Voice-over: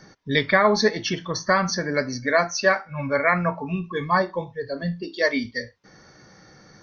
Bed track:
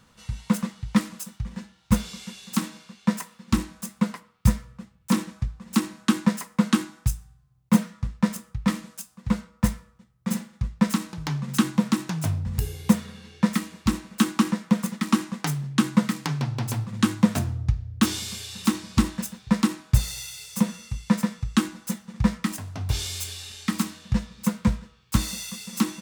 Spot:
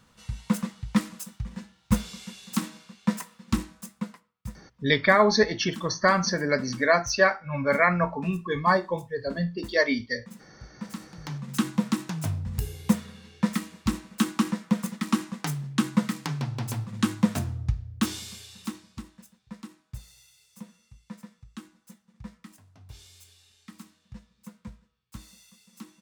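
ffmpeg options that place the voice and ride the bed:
-filter_complex "[0:a]adelay=4550,volume=-1dB[a];[1:a]volume=13dB,afade=t=out:st=3.42:d=0.92:silence=0.149624,afade=t=in:st=10.78:d=0.95:silence=0.16788,afade=t=out:st=17.79:d=1.23:silence=0.133352[b];[a][b]amix=inputs=2:normalize=0"

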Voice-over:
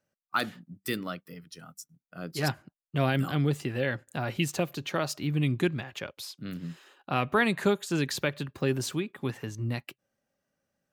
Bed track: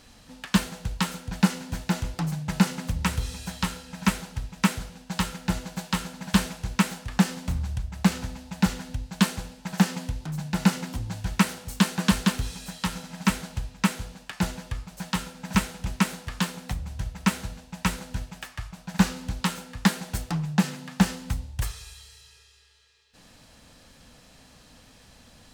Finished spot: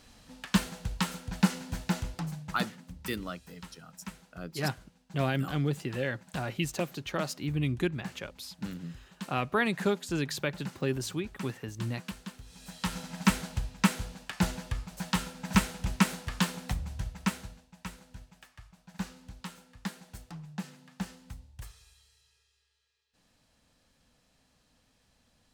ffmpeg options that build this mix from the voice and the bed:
-filter_complex "[0:a]adelay=2200,volume=-3dB[a];[1:a]volume=14.5dB,afade=t=out:st=1.9:d=0.87:silence=0.158489,afade=t=in:st=12.46:d=0.58:silence=0.11885,afade=t=out:st=16.71:d=1.01:silence=0.188365[b];[a][b]amix=inputs=2:normalize=0"

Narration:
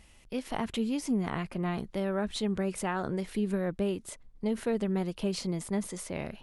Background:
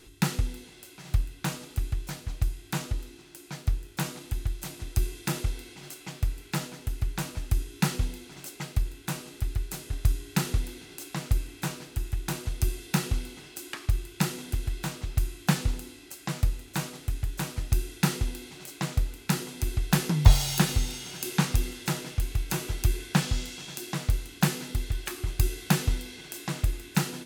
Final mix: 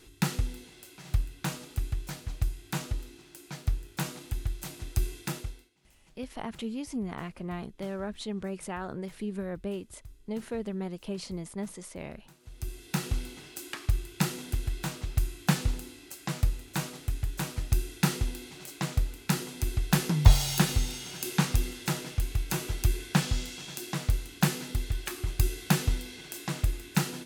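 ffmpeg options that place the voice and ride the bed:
-filter_complex "[0:a]adelay=5850,volume=-4.5dB[a];[1:a]volume=22.5dB,afade=t=out:st=5.14:d=0.56:silence=0.0668344,afade=t=in:st=12.39:d=0.86:silence=0.0595662[b];[a][b]amix=inputs=2:normalize=0"

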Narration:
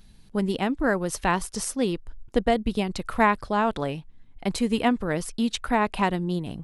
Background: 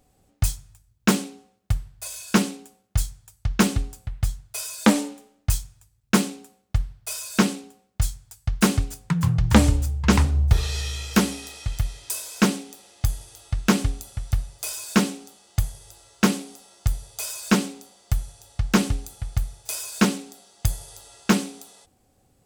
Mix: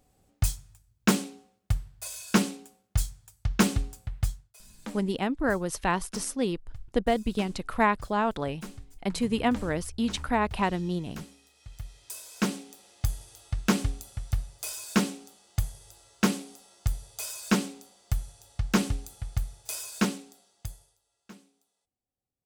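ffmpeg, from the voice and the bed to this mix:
-filter_complex "[0:a]adelay=4600,volume=-3dB[a];[1:a]volume=14.5dB,afade=t=out:st=4.24:d=0.29:silence=0.105925,afade=t=in:st=11.54:d=1.39:silence=0.125893,afade=t=out:st=19.81:d=1.16:silence=0.0562341[b];[a][b]amix=inputs=2:normalize=0"

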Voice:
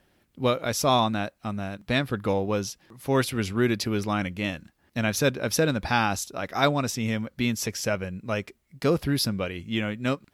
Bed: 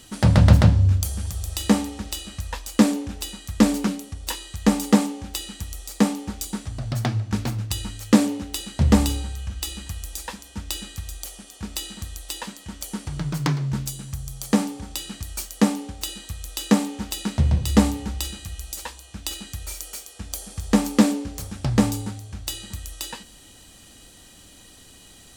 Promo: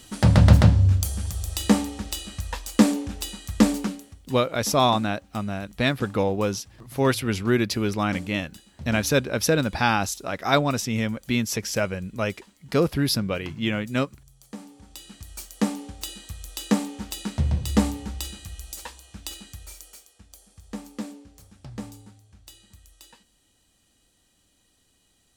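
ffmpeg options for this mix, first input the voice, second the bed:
-filter_complex "[0:a]adelay=3900,volume=2dB[a];[1:a]volume=15.5dB,afade=t=out:st=3.57:d=0.7:silence=0.105925,afade=t=in:st=14.56:d=1.3:silence=0.158489,afade=t=out:st=19.04:d=1.24:silence=0.211349[b];[a][b]amix=inputs=2:normalize=0"

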